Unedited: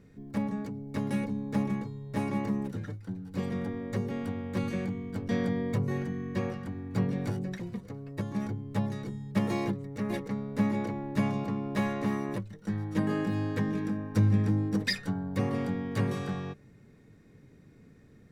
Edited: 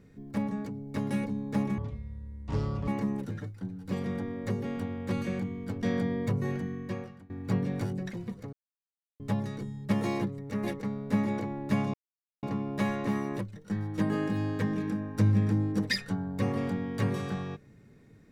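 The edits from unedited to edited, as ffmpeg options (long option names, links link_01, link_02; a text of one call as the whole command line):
ffmpeg -i in.wav -filter_complex "[0:a]asplit=7[link_01][link_02][link_03][link_04][link_05][link_06][link_07];[link_01]atrim=end=1.784[link_08];[link_02]atrim=start=1.78:end=2.34,asetpts=PTS-STARTPTS,asetrate=22491,aresample=44100[link_09];[link_03]atrim=start=2.336:end=6.76,asetpts=PTS-STARTPTS,afade=type=out:start_time=3.784:duration=0.64:silence=0.0841395[link_10];[link_04]atrim=start=6.76:end=7.99,asetpts=PTS-STARTPTS,afade=type=in:duration=0.004:curve=hsin:silence=0.0841395,afade=type=out:start_time=1.226:duration=0.004:curve=hsin[link_11];[link_05]atrim=start=7.99:end=8.66,asetpts=PTS-STARTPTS,volume=0[link_12];[link_06]atrim=start=8.66:end=11.4,asetpts=PTS-STARTPTS,afade=type=in:duration=0.004:curve=hsin,afade=type=out:start_time=2.736:duration=0.004:curve=hsin,apad=pad_dur=0.49[link_13];[link_07]atrim=start=11.4,asetpts=PTS-STARTPTS,afade=type=in:duration=0.004:curve=hsin[link_14];[link_08][link_09]acrossfade=duration=0.004:curve1=hsin:curve2=hsin[link_15];[link_10][link_11][link_12][link_13][link_14]concat=n=5:v=0:a=1[link_16];[link_15][link_16]acrossfade=duration=0.004:curve1=hsin:curve2=hsin" out.wav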